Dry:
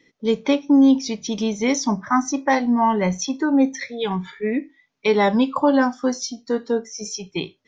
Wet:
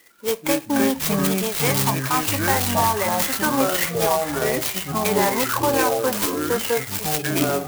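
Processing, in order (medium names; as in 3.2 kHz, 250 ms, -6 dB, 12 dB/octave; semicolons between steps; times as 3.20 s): high-pass 700 Hz 12 dB/octave; peak limiter -19.5 dBFS, peak gain reduction 10 dB; ever faster or slower copies 102 ms, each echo -6 st, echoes 3; sampling jitter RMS 0.073 ms; trim +7.5 dB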